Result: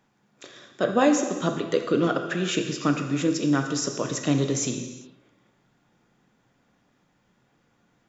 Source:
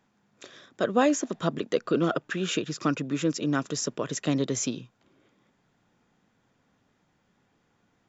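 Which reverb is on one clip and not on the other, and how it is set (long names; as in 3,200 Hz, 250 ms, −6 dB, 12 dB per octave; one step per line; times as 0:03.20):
reverb whose tail is shaped and stops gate 430 ms falling, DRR 4.5 dB
level +1.5 dB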